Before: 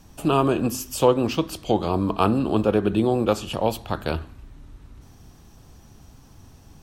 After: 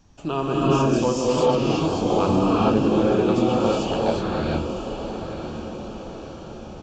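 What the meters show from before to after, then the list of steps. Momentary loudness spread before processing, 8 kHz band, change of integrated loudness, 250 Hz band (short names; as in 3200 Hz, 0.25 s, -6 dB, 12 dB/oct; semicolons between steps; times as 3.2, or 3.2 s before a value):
8 LU, -1.5 dB, +1.0 dB, +2.5 dB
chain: on a send: diffused feedback echo 1.003 s, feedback 53%, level -9 dB; on the sum: non-linear reverb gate 0.48 s rising, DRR -7 dB; downsampling 16000 Hz; gain -6.5 dB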